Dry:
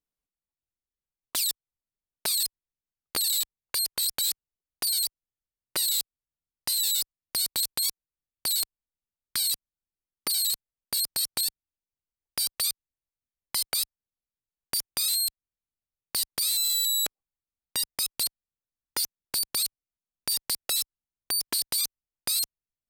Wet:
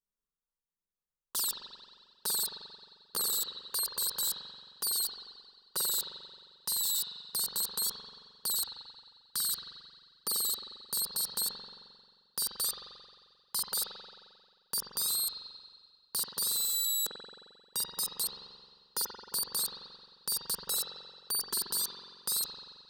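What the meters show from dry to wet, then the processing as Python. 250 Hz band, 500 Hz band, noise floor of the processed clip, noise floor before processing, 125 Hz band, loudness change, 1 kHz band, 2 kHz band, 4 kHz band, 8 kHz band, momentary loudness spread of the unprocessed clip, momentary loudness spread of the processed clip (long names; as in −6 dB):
−3.5 dB, −2.0 dB, below −85 dBFS, below −85 dBFS, −3.0 dB, −5.0 dB, −1.0 dB, −8.5 dB, −6.5 dB, −4.5 dB, 8 LU, 18 LU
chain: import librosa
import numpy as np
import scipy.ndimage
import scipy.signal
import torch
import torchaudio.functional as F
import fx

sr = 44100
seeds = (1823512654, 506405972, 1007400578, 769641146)

y = fx.fixed_phaser(x, sr, hz=450.0, stages=8)
y = fx.rev_spring(y, sr, rt60_s=1.8, pass_ms=(44,), chirp_ms=55, drr_db=-2.5)
y = y * 10.0 ** (-4.0 / 20.0)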